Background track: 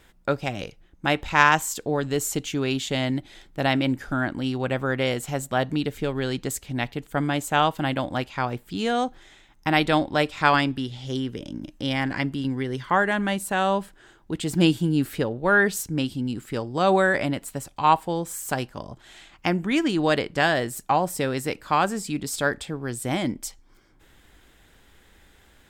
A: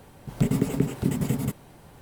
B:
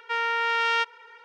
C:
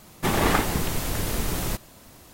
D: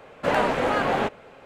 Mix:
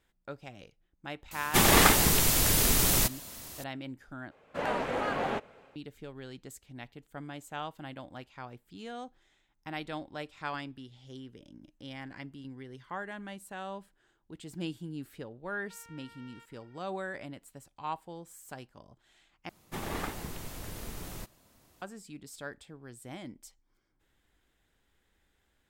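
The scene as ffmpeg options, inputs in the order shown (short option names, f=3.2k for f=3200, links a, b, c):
-filter_complex "[3:a]asplit=2[a][b];[0:a]volume=-18dB[c];[a]highshelf=f=2.4k:g=10[d];[4:a]dynaudnorm=f=120:g=5:m=7dB[e];[2:a]acompressor=threshold=-35dB:ratio=6:attack=3.2:release=140:knee=1:detection=peak[f];[c]asplit=3[g][h][i];[g]atrim=end=4.314[j];[e]atrim=end=1.45,asetpts=PTS-STARTPTS,volume=-14.5dB[k];[h]atrim=start=5.756:end=19.494[l];[b]atrim=end=2.33,asetpts=PTS-STARTPTS,volume=-14.5dB[m];[i]atrim=start=21.816[n];[d]atrim=end=2.33,asetpts=PTS-STARTPTS,volume=-1.5dB,afade=t=in:d=0.004:c=hsin,afade=t=out:st=2.326:d=0.004:c=hsin,adelay=1310[o];[f]atrim=end=1.24,asetpts=PTS-STARTPTS,volume=-17.5dB,afade=t=in:d=0.004:c=hsin,afade=t=out:st=1.236:d=0.004:c=hsin,adelay=15610[p];[j][k]acrossfade=d=0.004:c1=hsin:c2=hsin[q];[q][l]acrossfade=d=0.004:c1=hsin:c2=hsin[r];[r][m]acrossfade=d=0.004:c1=hsin:c2=hsin[s];[s][n]acrossfade=d=0.004:c1=hsin:c2=hsin[t];[t][o][p]amix=inputs=3:normalize=0"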